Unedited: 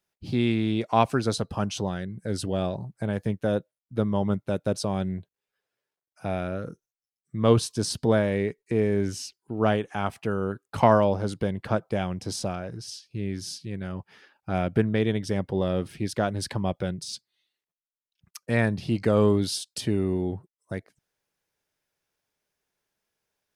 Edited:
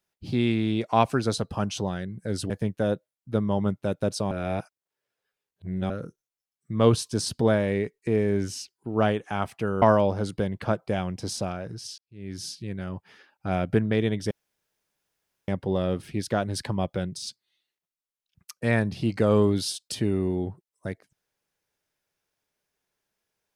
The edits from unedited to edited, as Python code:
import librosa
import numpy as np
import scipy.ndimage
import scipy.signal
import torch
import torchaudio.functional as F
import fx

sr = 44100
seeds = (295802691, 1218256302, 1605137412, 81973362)

y = fx.edit(x, sr, fx.cut(start_s=2.5, length_s=0.64),
    fx.reverse_span(start_s=4.95, length_s=1.59),
    fx.cut(start_s=10.46, length_s=0.39),
    fx.fade_in_span(start_s=13.01, length_s=0.41, curve='qua'),
    fx.insert_room_tone(at_s=15.34, length_s=1.17), tone=tone)